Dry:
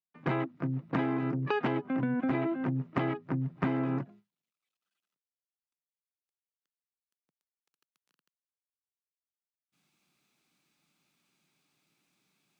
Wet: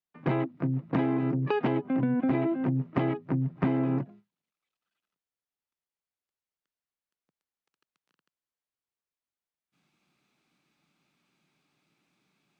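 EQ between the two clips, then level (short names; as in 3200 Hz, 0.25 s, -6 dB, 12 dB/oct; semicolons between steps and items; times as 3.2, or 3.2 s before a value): LPF 2800 Hz 6 dB/oct; dynamic EQ 1400 Hz, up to -6 dB, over -51 dBFS, Q 1.3; +4.0 dB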